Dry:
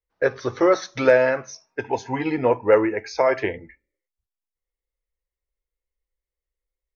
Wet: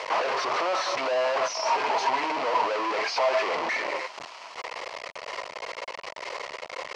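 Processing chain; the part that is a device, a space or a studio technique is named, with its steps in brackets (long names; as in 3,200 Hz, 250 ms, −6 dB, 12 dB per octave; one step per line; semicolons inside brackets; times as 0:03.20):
0:02.73–0:03.43: high-pass filter 61 Hz 24 dB per octave
home computer beeper (sign of each sample alone; loudspeaker in its box 630–4,500 Hz, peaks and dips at 640 Hz +7 dB, 1,000 Hz +8 dB, 1,600 Hz −6 dB, 3,600 Hz −9 dB)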